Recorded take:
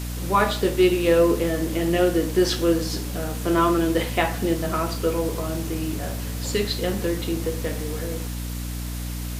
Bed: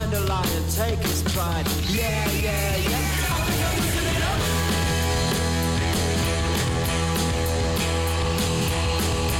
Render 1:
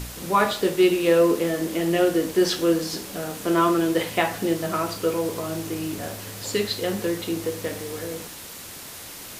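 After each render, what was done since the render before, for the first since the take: de-hum 60 Hz, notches 5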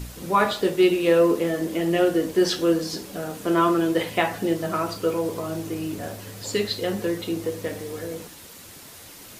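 noise reduction 6 dB, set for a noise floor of -39 dBFS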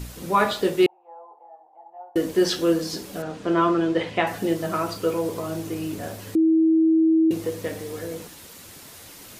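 0.86–2.16 s: Butterworth band-pass 820 Hz, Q 6.3; 3.22–4.27 s: distance through air 110 m; 6.35–7.31 s: bleep 322 Hz -14.5 dBFS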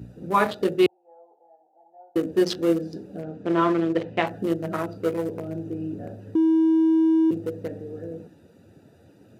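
local Wiener filter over 41 samples; high-pass 85 Hz 24 dB/octave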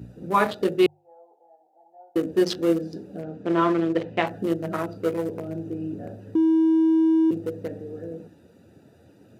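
hum notches 50/100/150 Hz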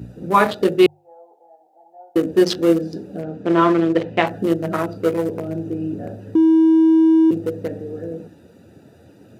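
trim +6 dB; peak limiter -2 dBFS, peak gain reduction 1 dB

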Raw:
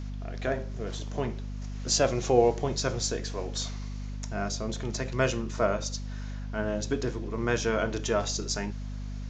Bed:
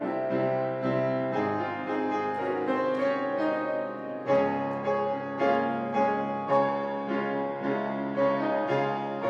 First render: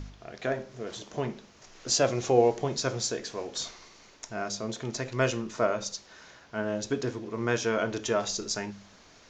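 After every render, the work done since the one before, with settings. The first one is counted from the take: de-hum 50 Hz, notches 5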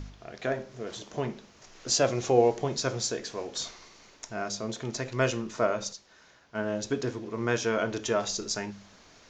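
5.93–6.55 s: gain -6.5 dB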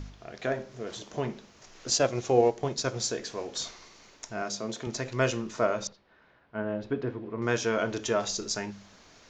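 1.90–3.00 s: transient shaper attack -1 dB, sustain -6 dB; 4.42–4.87 s: high-pass 140 Hz; 5.87–7.42 s: distance through air 420 m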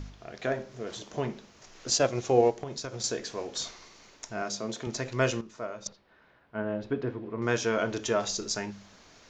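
2.63–3.04 s: compression 12:1, threshold -32 dBFS; 5.41–5.86 s: gain -10.5 dB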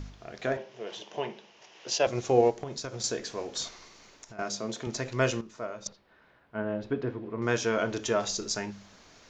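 0.57–2.07 s: cabinet simulation 250–5700 Hz, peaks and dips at 260 Hz -10 dB, 880 Hz +4 dB, 1.3 kHz -6 dB, 2.9 kHz +8 dB, 4.3 kHz -5 dB; 3.68–4.39 s: compression, threshold -43 dBFS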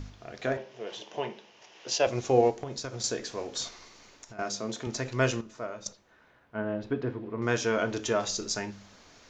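two-slope reverb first 0.24 s, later 1.7 s, from -28 dB, DRR 14.5 dB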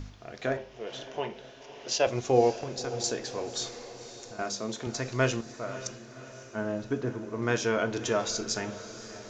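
echo that smears into a reverb 559 ms, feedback 58%, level -14 dB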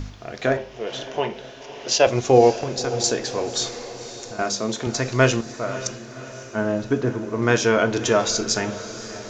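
trim +9 dB; peak limiter -2 dBFS, peak gain reduction 1.5 dB

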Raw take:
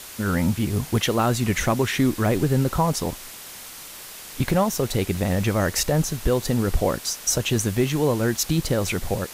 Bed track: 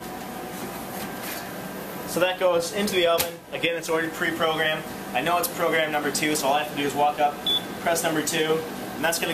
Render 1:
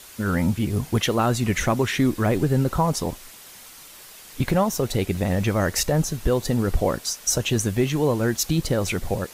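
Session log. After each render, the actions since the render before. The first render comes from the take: noise reduction 6 dB, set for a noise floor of -40 dBFS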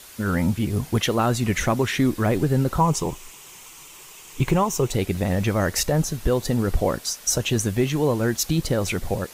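2.80–4.93 s: rippled EQ curve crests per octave 0.71, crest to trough 8 dB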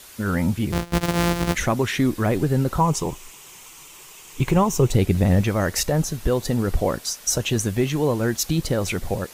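0.72–1.55 s: sorted samples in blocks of 256 samples; 4.56–5.41 s: bass shelf 280 Hz +8 dB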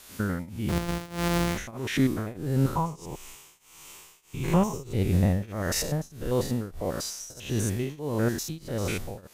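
spectrogram pixelated in time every 100 ms; tremolo triangle 1.6 Hz, depth 95%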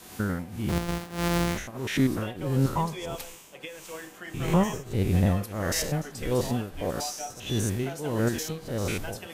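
add bed track -16.5 dB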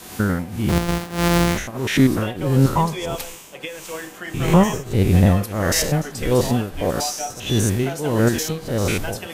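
trim +8.5 dB

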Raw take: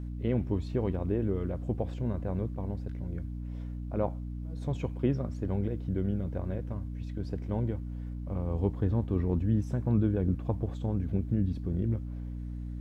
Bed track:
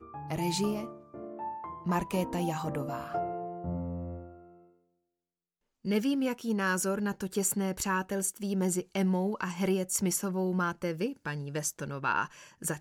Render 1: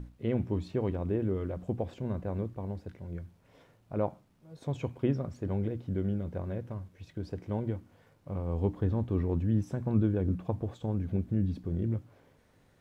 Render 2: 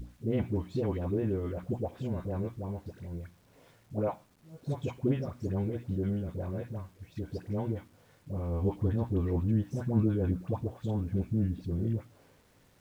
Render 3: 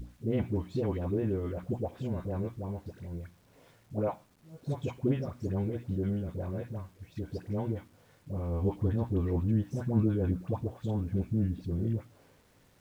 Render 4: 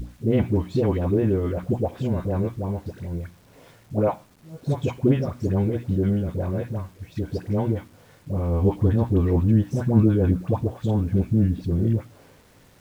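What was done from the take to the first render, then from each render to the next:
hum notches 60/120/180/240/300 Hz
phase dispersion highs, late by 90 ms, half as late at 750 Hz; bit crusher 11-bit
no audible change
trim +9.5 dB

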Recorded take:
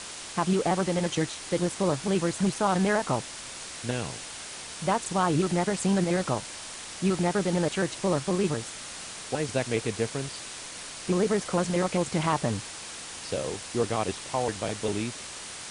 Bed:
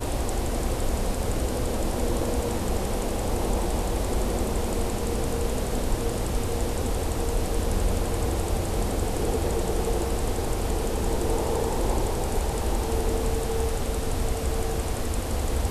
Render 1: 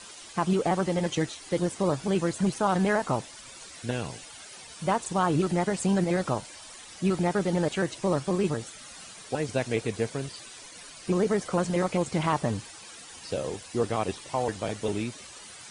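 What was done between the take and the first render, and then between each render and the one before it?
noise reduction 12 dB, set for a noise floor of -41 dBFS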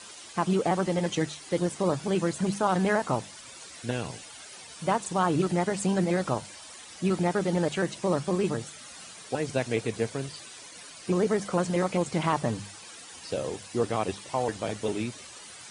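high-pass 61 Hz; hum notches 50/100/150/200 Hz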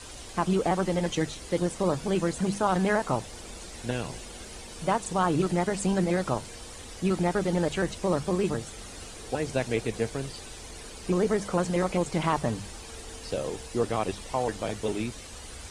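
add bed -19.5 dB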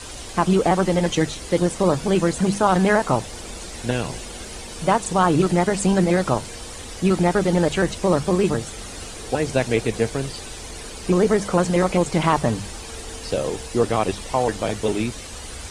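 trim +7.5 dB

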